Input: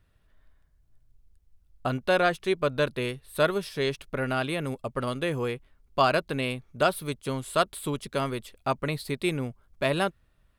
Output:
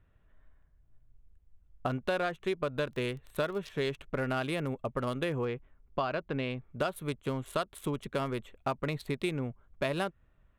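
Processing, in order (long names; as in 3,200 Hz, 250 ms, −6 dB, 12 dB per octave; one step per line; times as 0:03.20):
adaptive Wiener filter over 9 samples
downward compressor 6 to 1, threshold −28 dBFS, peak gain reduction 11 dB
0:02.91–0:03.67: surface crackle 24 per second −39 dBFS
0:05.45–0:06.71: high-frequency loss of the air 170 metres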